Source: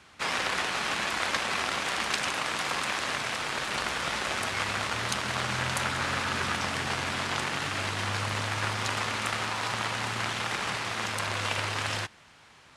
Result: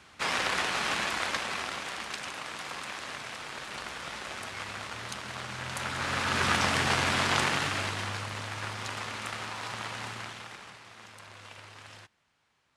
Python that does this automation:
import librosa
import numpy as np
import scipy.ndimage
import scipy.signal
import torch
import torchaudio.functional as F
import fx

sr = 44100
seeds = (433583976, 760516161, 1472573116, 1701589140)

y = fx.gain(x, sr, db=fx.line((0.95, 0.0), (2.09, -8.5), (5.58, -8.5), (6.52, 4.0), (7.45, 4.0), (8.29, -6.5), (10.07, -6.5), (10.78, -18.0)))